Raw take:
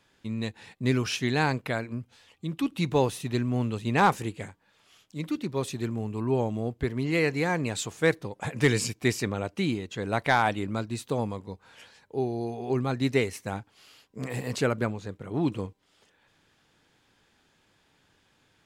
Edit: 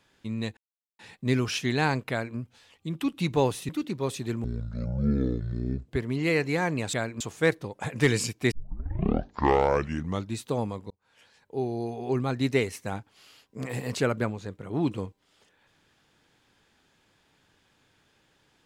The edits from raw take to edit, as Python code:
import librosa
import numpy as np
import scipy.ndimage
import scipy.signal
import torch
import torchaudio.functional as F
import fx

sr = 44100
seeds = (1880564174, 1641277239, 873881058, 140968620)

y = fx.edit(x, sr, fx.insert_silence(at_s=0.57, length_s=0.42),
    fx.duplicate(start_s=1.68, length_s=0.27, to_s=7.81),
    fx.cut(start_s=3.27, length_s=1.96),
    fx.speed_span(start_s=5.98, length_s=0.78, speed=0.54),
    fx.tape_start(start_s=9.12, length_s=1.88),
    fx.fade_in_span(start_s=11.51, length_s=0.8), tone=tone)